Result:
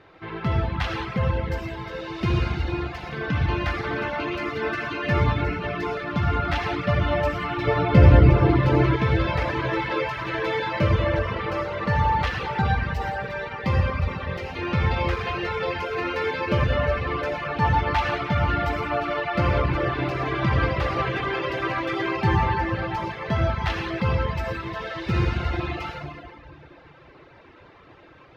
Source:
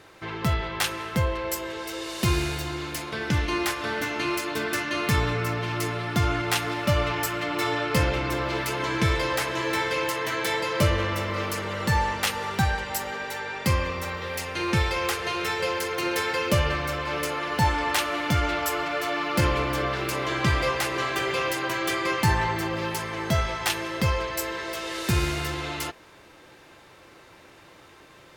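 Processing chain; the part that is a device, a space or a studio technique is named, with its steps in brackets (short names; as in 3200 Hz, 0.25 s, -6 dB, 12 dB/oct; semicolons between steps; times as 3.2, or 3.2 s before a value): stairwell (reverb RT60 2.2 s, pre-delay 52 ms, DRR -3 dB); reverb removal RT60 0.88 s; 7.67–8.96 low shelf 440 Hz +11.5 dB; air absorption 280 m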